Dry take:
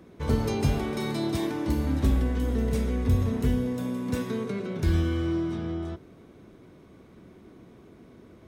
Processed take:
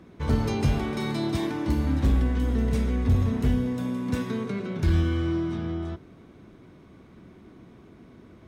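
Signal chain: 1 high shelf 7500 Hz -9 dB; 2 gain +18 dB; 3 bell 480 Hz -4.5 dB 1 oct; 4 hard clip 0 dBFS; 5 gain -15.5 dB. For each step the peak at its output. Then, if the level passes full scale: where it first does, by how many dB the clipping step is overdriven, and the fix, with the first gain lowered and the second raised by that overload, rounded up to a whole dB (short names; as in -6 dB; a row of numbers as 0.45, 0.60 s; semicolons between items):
-12.5, +5.5, +5.5, 0.0, -15.5 dBFS; step 2, 5.5 dB; step 2 +12 dB, step 5 -9.5 dB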